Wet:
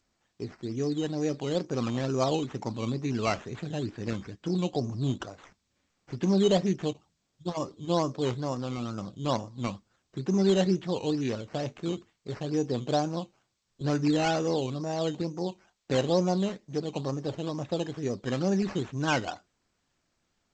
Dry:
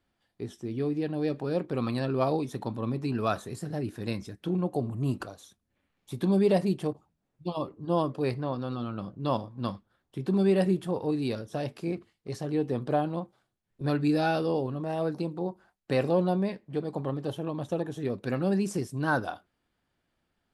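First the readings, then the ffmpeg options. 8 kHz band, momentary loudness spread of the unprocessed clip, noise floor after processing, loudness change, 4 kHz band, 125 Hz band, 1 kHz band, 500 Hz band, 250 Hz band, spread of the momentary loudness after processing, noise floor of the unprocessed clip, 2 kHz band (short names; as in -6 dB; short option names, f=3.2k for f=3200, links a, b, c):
n/a, 11 LU, -77 dBFS, 0.0 dB, +6.5 dB, 0.0 dB, -0.5 dB, 0.0 dB, 0.0 dB, 11 LU, -79 dBFS, -0.5 dB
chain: -af "acrusher=samples=10:mix=1:aa=0.000001:lfo=1:lforange=6:lforate=2.2" -ar 16000 -c:a g722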